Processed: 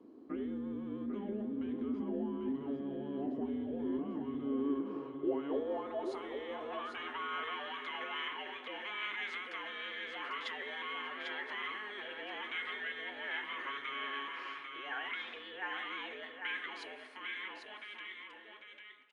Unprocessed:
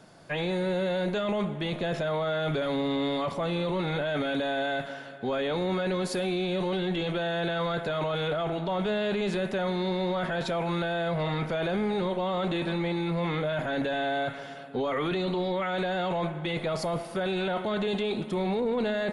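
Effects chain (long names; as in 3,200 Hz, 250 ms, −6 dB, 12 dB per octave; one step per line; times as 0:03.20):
fade-out on the ending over 4.79 s
frequency shifter −420 Hz
downward compressor 3 to 1, threshold −32 dBFS, peak gain reduction 6.5 dB
band-pass filter sweep 230 Hz → 2,000 Hz, 0:04.32–0:07.71
low shelf with overshoot 250 Hz −13 dB, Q 3
on a send: single-tap delay 796 ms −6 dB
on the sum: level +6.5 dB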